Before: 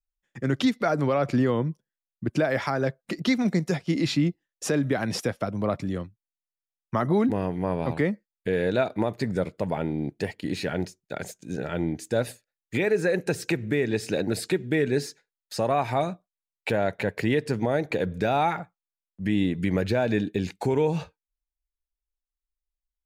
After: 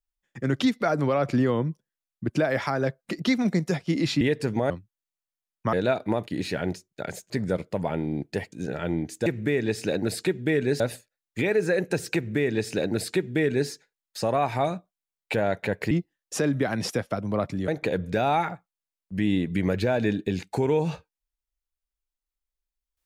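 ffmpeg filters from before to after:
-filter_complex "[0:a]asplit=11[s0][s1][s2][s3][s4][s5][s6][s7][s8][s9][s10];[s0]atrim=end=4.212[s11];[s1]atrim=start=17.268:end=17.762[s12];[s2]atrim=start=5.978:end=7.012[s13];[s3]atrim=start=8.628:end=9.172[s14];[s4]atrim=start=10.388:end=11.422[s15];[s5]atrim=start=9.168:end=10.392[s16];[s6]atrim=start=11.418:end=12.162[s17];[s7]atrim=start=13.508:end=15.052[s18];[s8]atrim=start=12.158:end=17.272[s19];[s9]atrim=start=4.208:end=5.982[s20];[s10]atrim=start=17.758[s21];[s11][s12]acrossfade=d=0.004:c1=hsin:c2=hsin[s22];[s22][s13]acrossfade=d=0.004:c1=hsin:c2=hsin[s23];[s23][s14]acrossfade=d=0.004:c1=hsin:c2=hsin[s24];[s24][s15]acrossfade=d=0.004:c1=hsin:c2=hsin[s25];[s25][s16]acrossfade=d=0.004:c1=hsin:c2=hsin[s26];[s26][s17]acrossfade=d=0.004:c1=hsin:c2=hsin[s27];[s27][s18]acrossfade=d=0.004:c1=hsin:c2=hsin[s28];[s28][s19]acrossfade=d=0.004:c1=hsin:c2=hsin[s29];[s29][s20]acrossfade=d=0.004:c1=hsin:c2=hsin[s30];[s30][s21]acrossfade=d=0.004:c1=hsin:c2=hsin"

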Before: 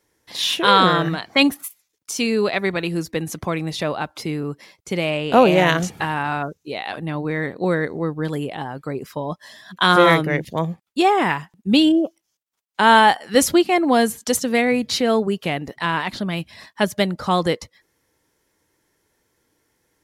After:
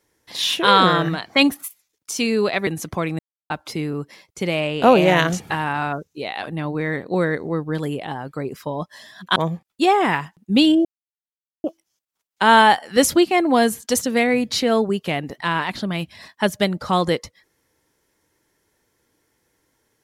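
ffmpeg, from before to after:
-filter_complex "[0:a]asplit=6[s0][s1][s2][s3][s4][s5];[s0]atrim=end=2.672[s6];[s1]atrim=start=3.168:end=3.69,asetpts=PTS-STARTPTS,afade=t=out:st=0.518:d=0.004:c=hsin[s7];[s2]atrim=start=3.69:end=4,asetpts=PTS-STARTPTS,volume=0[s8];[s3]atrim=start=4:end=9.862,asetpts=PTS-STARTPTS,afade=t=in:d=0.004:c=hsin[s9];[s4]atrim=start=10.528:end=12.02,asetpts=PTS-STARTPTS,afade=t=out:st=1.488:d=0.004:c=hsin,apad=pad_dur=0.79[s10];[s5]atrim=start=12.02,asetpts=PTS-STARTPTS,afade=t=in:d=0.004:c=hsin[s11];[s7][s8][s9]concat=n=3:v=0:a=1[s12];[s6][s12]acrossfade=d=0.004:c1=hsin:c2=hsin[s13];[s10][s11]concat=n=2:v=0:a=1[s14];[s13][s14]acrossfade=d=0.004:c1=hsin:c2=hsin"

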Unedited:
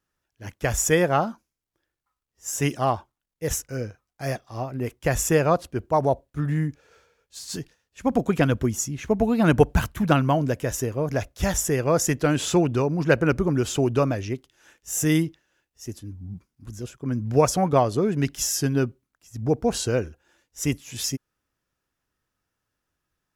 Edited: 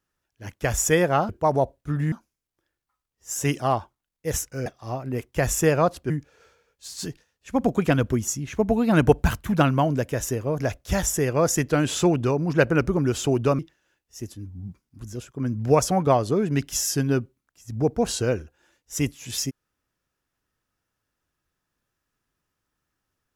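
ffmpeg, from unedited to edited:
-filter_complex "[0:a]asplit=6[s0][s1][s2][s3][s4][s5];[s0]atrim=end=1.292[s6];[s1]atrim=start=5.778:end=6.612[s7];[s2]atrim=start=1.288:end=3.832[s8];[s3]atrim=start=4.338:end=5.782[s9];[s4]atrim=start=6.608:end=14.102[s10];[s5]atrim=start=15.248[s11];[s6][s7]acrossfade=d=0.004:c1=hsin:c2=hsin[s12];[s12][s8]acrossfade=d=0.004:c1=hsin:c2=hsin[s13];[s13][s9]acrossfade=d=0.004:c1=hsin:c2=hsin[s14];[s14][s10]acrossfade=d=0.004:c1=hsin:c2=hsin[s15];[s15][s11]acrossfade=d=0.004:c1=hsin:c2=hsin"

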